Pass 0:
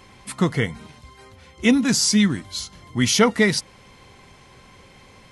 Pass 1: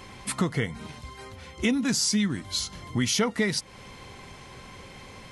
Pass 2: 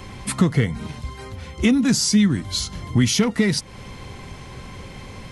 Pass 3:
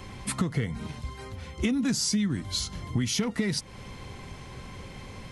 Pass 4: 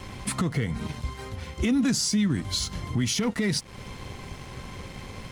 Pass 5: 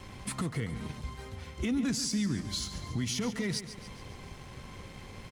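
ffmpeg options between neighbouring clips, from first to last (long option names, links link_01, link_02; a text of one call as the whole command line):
ffmpeg -i in.wav -af "acompressor=threshold=-29dB:ratio=3,volume=3.5dB" out.wav
ffmpeg -i in.wav -filter_complex "[0:a]lowshelf=frequency=250:gain=8.5,acrossover=split=350|1900[link_01][link_02][link_03];[link_02]volume=28dB,asoftclip=hard,volume=-28dB[link_04];[link_01][link_04][link_03]amix=inputs=3:normalize=0,volume=4dB" out.wav
ffmpeg -i in.wav -af "acompressor=threshold=-18dB:ratio=6,volume=-5dB" out.wav
ffmpeg -i in.wav -af "alimiter=limit=-21.5dB:level=0:latency=1:release=58,aeval=exprs='sgn(val(0))*max(abs(val(0))-0.00251,0)':channel_layout=same,volume=5dB" out.wav
ffmpeg -i in.wav -af "aecho=1:1:140|280|420|560|700:0.251|0.131|0.0679|0.0353|0.0184,volume=-7dB" out.wav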